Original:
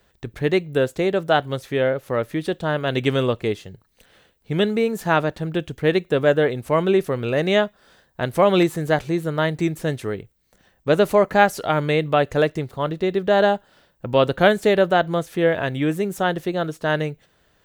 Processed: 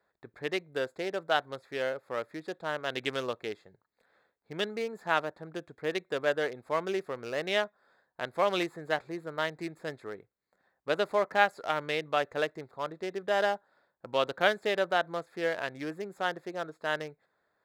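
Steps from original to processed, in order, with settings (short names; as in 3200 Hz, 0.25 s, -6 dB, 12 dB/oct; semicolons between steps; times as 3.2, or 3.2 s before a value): Wiener smoothing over 15 samples; HPF 1100 Hz 6 dB/oct; 5.21–5.92 dynamic EQ 2900 Hz, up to -7 dB, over -43 dBFS, Q 0.74; gain -4.5 dB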